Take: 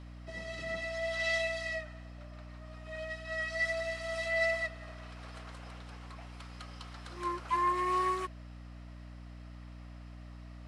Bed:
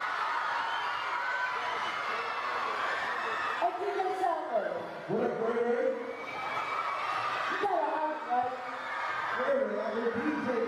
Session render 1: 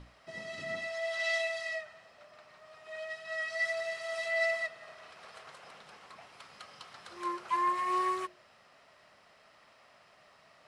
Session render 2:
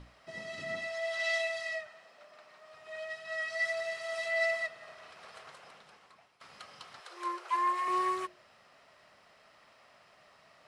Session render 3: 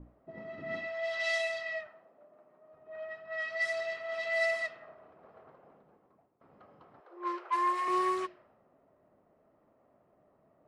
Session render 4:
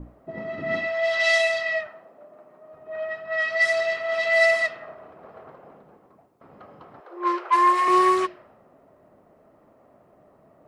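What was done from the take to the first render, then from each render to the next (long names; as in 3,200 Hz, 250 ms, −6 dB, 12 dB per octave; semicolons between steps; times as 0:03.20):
mains-hum notches 60/120/180/240/300/360 Hz
0:01.87–0:02.73: high-pass filter 210 Hz; 0:05.45–0:06.41: fade out, to −17 dB; 0:07.00–0:07.88: Butterworth high-pass 360 Hz
low-pass that shuts in the quiet parts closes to 500 Hz, open at −28 dBFS; parametric band 300 Hz +6.5 dB 0.88 octaves
level +11.5 dB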